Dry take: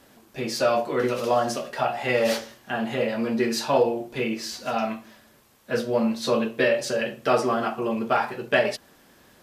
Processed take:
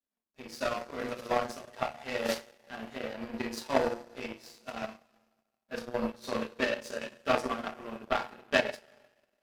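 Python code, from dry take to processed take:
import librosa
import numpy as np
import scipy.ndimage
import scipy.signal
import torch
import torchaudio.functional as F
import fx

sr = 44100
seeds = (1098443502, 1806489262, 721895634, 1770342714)

y = fx.rev_double_slope(x, sr, seeds[0], early_s=0.22, late_s=2.8, knee_db=-18, drr_db=1.0)
y = fx.power_curve(y, sr, exponent=2.0)
y = y * 10.0 ** (-2.0 / 20.0)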